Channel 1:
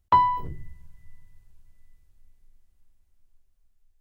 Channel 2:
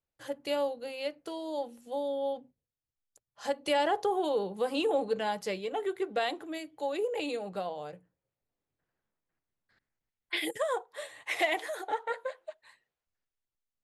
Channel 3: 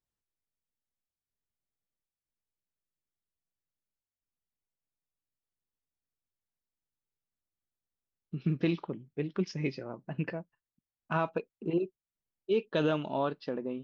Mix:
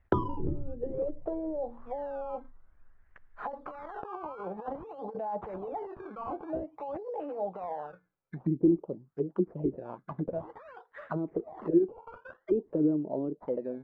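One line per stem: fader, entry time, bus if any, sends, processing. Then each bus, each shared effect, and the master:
+2.0 dB, 0.00 s, no send, dry
-3.5 dB, 0.00 s, no send, negative-ratio compressor -37 dBFS, ratio -1; low shelf 230 Hz -3.5 dB; auto duck -9 dB, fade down 1.10 s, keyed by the third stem
-4.0 dB, 0.00 s, no send, dry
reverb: off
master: decimation with a swept rate 16×, swing 100% 0.52 Hz; envelope low-pass 340–2000 Hz down, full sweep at -31.5 dBFS

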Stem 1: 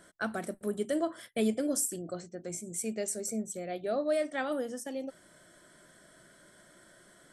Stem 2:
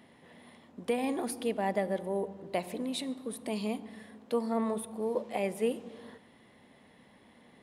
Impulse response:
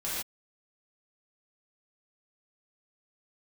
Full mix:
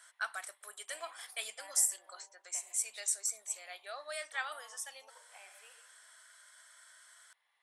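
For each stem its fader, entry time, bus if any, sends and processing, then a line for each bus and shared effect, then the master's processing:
-0.5 dB, 0.00 s, no send, LPF 9800 Hz 12 dB/oct; high shelf 5300 Hz +7 dB
-9.5 dB, 0.00 s, send -17 dB, auto duck -7 dB, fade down 0.25 s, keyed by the first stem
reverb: on, pre-delay 3 ms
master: HPF 960 Hz 24 dB/oct

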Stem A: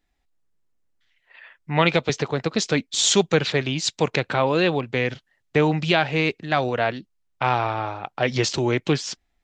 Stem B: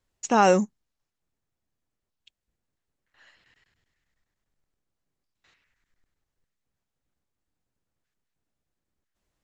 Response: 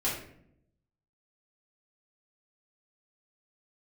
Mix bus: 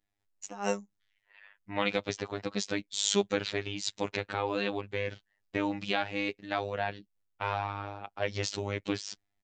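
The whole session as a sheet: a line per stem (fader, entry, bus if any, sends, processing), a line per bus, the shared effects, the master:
-8.0 dB, 0.00 s, no send, dry
-4.0 dB, 0.20 s, no send, de-esser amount 55%; dB-linear tremolo 4 Hz, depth 20 dB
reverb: off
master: robotiser 101 Hz

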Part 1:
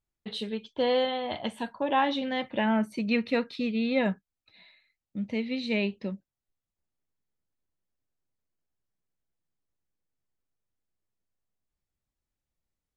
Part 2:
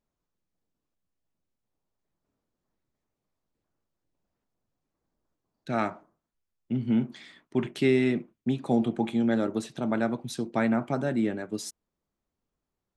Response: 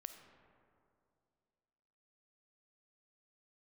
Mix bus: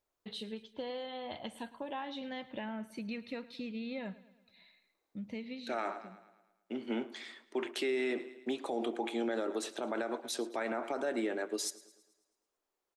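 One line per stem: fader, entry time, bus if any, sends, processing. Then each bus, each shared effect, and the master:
5.48 s -7.5 dB -> 5.84 s -17.5 dB, 0.00 s, no send, echo send -18.5 dB, high shelf 9700 Hz +10 dB; compressor 6:1, threshold -30 dBFS, peak gain reduction 9.5 dB
+1.5 dB, 0.00 s, no send, echo send -20 dB, HPF 350 Hz 24 dB/oct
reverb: off
echo: feedback echo 0.109 s, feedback 52%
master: limiter -25.5 dBFS, peak gain reduction 11.5 dB

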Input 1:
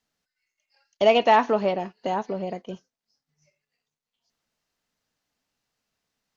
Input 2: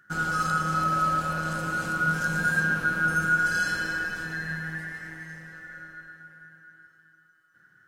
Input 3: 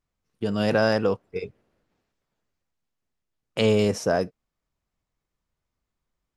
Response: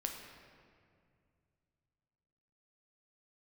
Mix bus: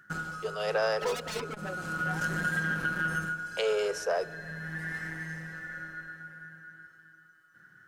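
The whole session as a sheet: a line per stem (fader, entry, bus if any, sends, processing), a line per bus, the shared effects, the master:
-5.0 dB, 0.00 s, no send, per-bin expansion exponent 3; tone controls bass -10 dB, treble -2 dB; wavefolder -27.5 dBFS
+1.5 dB, 0.00 s, send -20.5 dB, compressor 6:1, threshold -28 dBFS, peak gain reduction 9.5 dB; auto duck -16 dB, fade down 0.40 s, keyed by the third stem
-6.5 dB, 0.00 s, send -13.5 dB, steep high-pass 380 Hz 96 dB/oct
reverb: on, RT60 2.2 s, pre-delay 8 ms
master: bell 180 Hz +2 dB 0.77 oct; core saturation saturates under 680 Hz

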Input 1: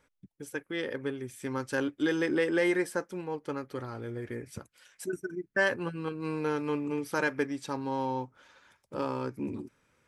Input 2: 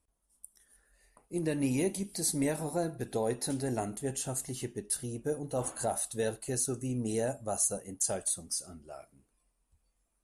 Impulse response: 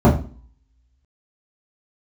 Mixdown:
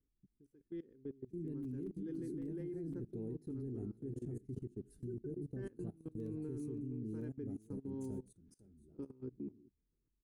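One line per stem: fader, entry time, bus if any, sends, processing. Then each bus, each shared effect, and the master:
-6.0 dB, 0.00 s, no send, no echo send, dry
-5.5 dB, 0.00 s, no send, echo send -12.5 dB, low shelf 330 Hz +6 dB; notch 1100 Hz, Q 5.8; wrapped overs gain 18.5 dB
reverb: off
echo: echo 0.51 s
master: EQ curve 400 Hz 0 dB, 570 Hz -24 dB, 4800 Hz -27 dB; level quantiser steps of 21 dB

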